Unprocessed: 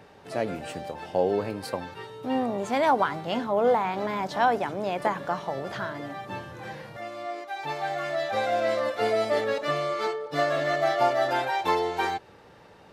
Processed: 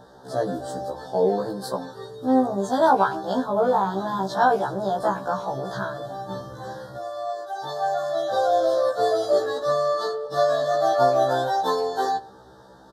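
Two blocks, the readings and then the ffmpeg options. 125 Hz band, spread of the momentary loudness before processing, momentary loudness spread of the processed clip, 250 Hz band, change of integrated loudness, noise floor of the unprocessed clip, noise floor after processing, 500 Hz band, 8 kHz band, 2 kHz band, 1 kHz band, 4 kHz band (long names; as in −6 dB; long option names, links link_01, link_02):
+3.0 dB, 13 LU, 13 LU, +4.5 dB, +3.5 dB, −52 dBFS, −48 dBFS, +4.5 dB, +4.0 dB, −2.0 dB, +4.0 dB, +1.0 dB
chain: -filter_complex "[0:a]asuperstop=centerf=2400:order=8:qfactor=1.4,asplit=2[link_01][link_02];[link_02]adelay=110,highpass=300,lowpass=3400,asoftclip=type=hard:threshold=-19dB,volume=-21dB[link_03];[link_01][link_03]amix=inputs=2:normalize=0,afftfilt=real='re*1.73*eq(mod(b,3),0)':imag='im*1.73*eq(mod(b,3),0)':win_size=2048:overlap=0.75,volume=6dB"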